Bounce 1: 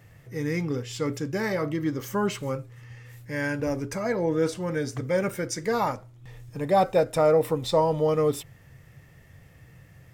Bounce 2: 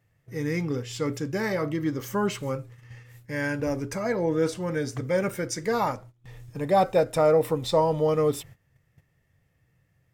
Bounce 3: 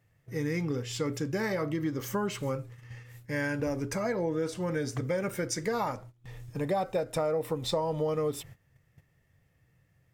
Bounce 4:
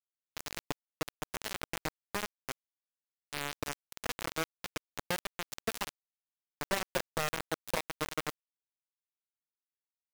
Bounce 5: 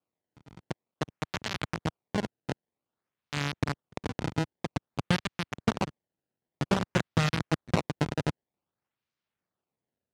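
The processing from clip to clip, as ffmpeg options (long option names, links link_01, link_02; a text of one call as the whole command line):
ffmpeg -i in.wav -af "agate=range=-16dB:threshold=-45dB:ratio=16:detection=peak" out.wav
ffmpeg -i in.wav -af "acompressor=threshold=-27dB:ratio=5" out.wav
ffmpeg -i in.wav -af "acrusher=bits=3:mix=0:aa=0.000001,volume=-4.5dB" out.wav
ffmpeg -i in.wav -af "asubboost=boost=8:cutoff=190,acrusher=samples=22:mix=1:aa=0.000001:lfo=1:lforange=35.2:lforate=0.52,highpass=110,lowpass=6200,volume=5.5dB" out.wav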